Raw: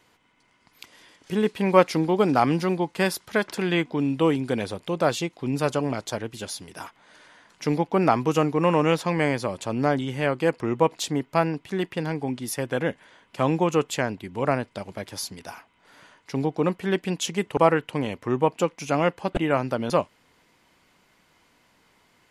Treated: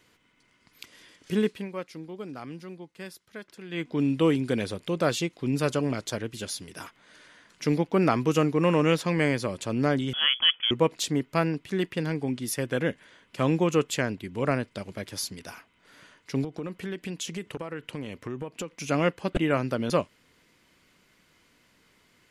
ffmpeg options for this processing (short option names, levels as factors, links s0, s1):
-filter_complex "[0:a]asettb=1/sr,asplit=3[s0][s1][s2];[s0]atrim=end=10.134[s3];[s1]atrim=start=10.13:end=10.71,asetpts=PTS-STARTPTS,afade=t=in:d=0.004:c=qsin,afade=t=out:st=0.576:d=0.004:c=qsin,lowpass=f=3000:t=q:w=0.5098,lowpass=f=3000:t=q:w=0.6013,lowpass=f=3000:t=q:w=0.9,lowpass=f=3000:t=q:w=2.563,afreqshift=-3500[s4];[s2]atrim=start=10.706[s5];[s3][s4]acrossfade=d=0.004:c1=hsin:c2=qsin[s6];[s6][s5]acrossfade=d=0.004:c1=qsin:c2=hsin,asettb=1/sr,asplit=3[s7][s8][s9];[s7]atrim=end=16.444[s10];[s8]atrim=start=16.44:end=18.85,asetpts=PTS-STARTPTS,afade=t=in:d=0.004:c=qsin,afade=t=out:st=2.406:d=0.004:c=qsin,acompressor=threshold=0.0316:ratio=5:attack=3.2:release=140:knee=1:detection=peak[s11];[s9]atrim=start=18.846[s12];[s10][s11]acrossfade=d=0.004:c1=hsin:c2=qsin[s13];[s13][s12]acrossfade=d=0.004:c1=qsin:c2=hsin,asplit=3[s14][s15][s16];[s14]atrim=end=1.69,asetpts=PTS-STARTPTS,afade=t=out:st=1.38:d=0.31:silence=0.149624[s17];[s15]atrim=start=1.69:end=3.69,asetpts=PTS-STARTPTS,volume=0.15[s18];[s16]atrim=start=3.69,asetpts=PTS-STARTPTS,afade=t=in:d=0.31:silence=0.149624[s19];[s17][s18][s19]concat=n=3:v=0:a=1,equalizer=f=830:w=1.8:g=-8.5"